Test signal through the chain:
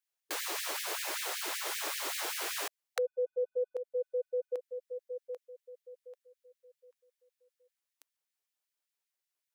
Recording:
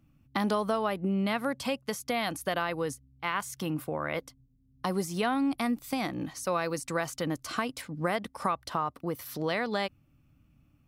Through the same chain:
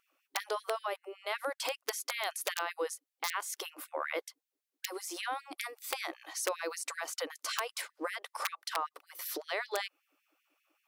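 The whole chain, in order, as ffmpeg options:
ffmpeg -i in.wav -af "acompressor=threshold=-32dB:ratio=8,aeval=exprs='(mod(15.8*val(0)+1,2)-1)/15.8':channel_layout=same,afftfilt=real='re*gte(b*sr/1024,290*pow(1700/290,0.5+0.5*sin(2*PI*5.2*pts/sr)))':imag='im*gte(b*sr/1024,290*pow(1700/290,0.5+0.5*sin(2*PI*5.2*pts/sr)))':win_size=1024:overlap=0.75,volume=3.5dB" out.wav

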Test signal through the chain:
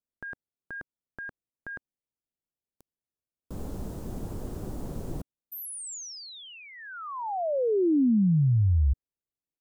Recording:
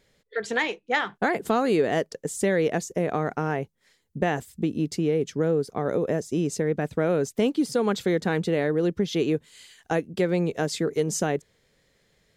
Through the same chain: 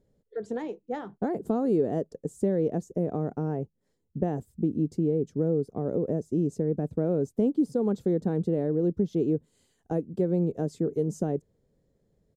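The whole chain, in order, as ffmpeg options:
ffmpeg -i in.wav -af "firequalizer=gain_entry='entry(270,0);entry(1100,-15);entry(2100,-26);entry(7100,-17)':delay=0.05:min_phase=1" out.wav

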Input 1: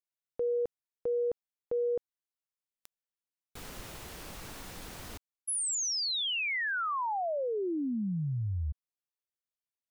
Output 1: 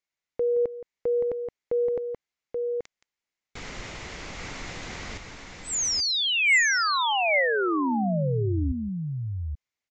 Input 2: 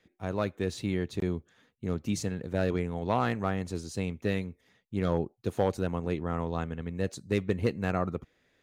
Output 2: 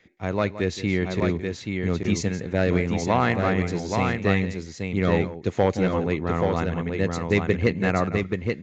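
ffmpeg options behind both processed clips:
ffmpeg -i in.wav -filter_complex "[0:a]equalizer=frequency=2100:width_type=o:width=0.37:gain=8.5,aresample=16000,aresample=44100,asplit=2[link_01][link_02];[link_02]aecho=0:1:171|830:0.2|0.596[link_03];[link_01][link_03]amix=inputs=2:normalize=0,volume=6dB" out.wav

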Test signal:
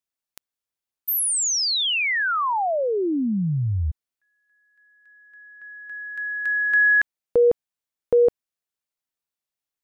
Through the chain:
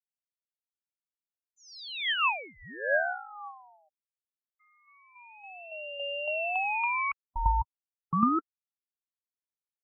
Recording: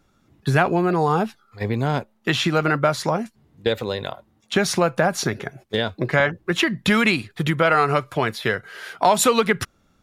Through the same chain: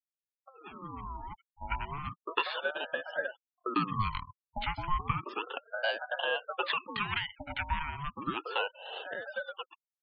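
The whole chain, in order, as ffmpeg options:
ffmpeg -i in.wav -filter_complex "[0:a]alimiter=limit=-12dB:level=0:latency=1:release=399,acrossover=split=370[link_01][link_02];[link_02]adelay=100[link_03];[link_01][link_03]amix=inputs=2:normalize=0,acompressor=threshold=-29dB:ratio=12:attack=50:release=896:knee=6:detection=rms,asplit=3[link_04][link_05][link_06];[link_04]bandpass=frequency=530:width_type=q:width=8,volume=0dB[link_07];[link_05]bandpass=frequency=1840:width_type=q:width=8,volume=-6dB[link_08];[link_06]bandpass=frequency=2480:width_type=q:width=8,volume=-9dB[link_09];[link_07][link_08][link_09]amix=inputs=3:normalize=0,highpass=140,equalizer=frequency=170:width_type=q:width=4:gain=9,equalizer=frequency=240:width_type=q:width=4:gain=-5,equalizer=frequency=390:width_type=q:width=4:gain=8,equalizer=frequency=690:width_type=q:width=4:gain=-7,equalizer=frequency=2100:width_type=q:width=4:gain=8,lowpass=frequency=5000:width=0.5412,lowpass=frequency=5000:width=1.3066,dynaudnorm=framelen=270:gausssize=9:maxgain=15dB,afftfilt=real='re*gte(hypot(re,im),0.0141)':imag='im*gte(hypot(re,im),0.0141)':win_size=1024:overlap=0.75,aeval=exprs='val(0)*sin(2*PI*770*n/s+770*0.45/0.33*sin(2*PI*0.33*n/s))':channel_layout=same,volume=-2.5dB" out.wav

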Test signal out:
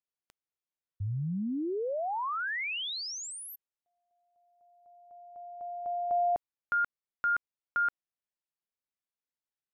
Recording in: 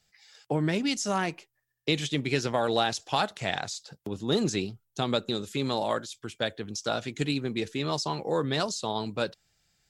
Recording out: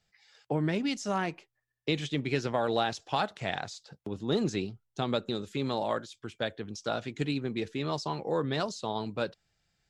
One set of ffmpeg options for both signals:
ffmpeg -i in.wav -af "aemphasis=mode=reproduction:type=50kf,volume=-2dB" out.wav

